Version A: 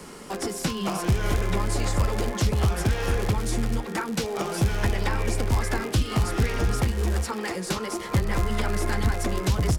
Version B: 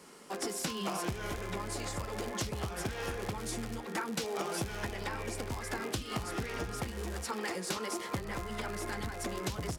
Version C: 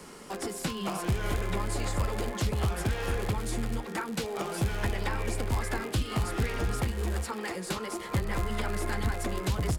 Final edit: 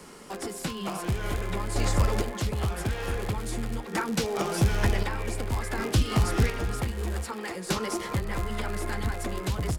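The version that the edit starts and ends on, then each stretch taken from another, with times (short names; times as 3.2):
C
1.76–2.22 from A
3.93–5.03 from A
5.78–6.5 from A
7.69–8.13 from A
not used: B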